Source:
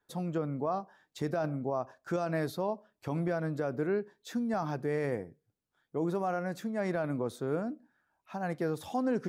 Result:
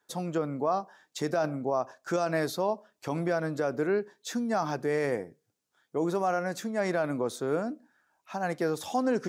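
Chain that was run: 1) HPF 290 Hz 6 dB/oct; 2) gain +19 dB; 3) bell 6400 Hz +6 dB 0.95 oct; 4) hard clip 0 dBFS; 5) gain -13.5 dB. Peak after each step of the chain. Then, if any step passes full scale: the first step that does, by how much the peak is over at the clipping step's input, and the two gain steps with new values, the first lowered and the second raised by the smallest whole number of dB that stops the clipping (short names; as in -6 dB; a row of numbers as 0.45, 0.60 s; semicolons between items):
-22.0, -3.0, -2.5, -2.5, -16.0 dBFS; no overload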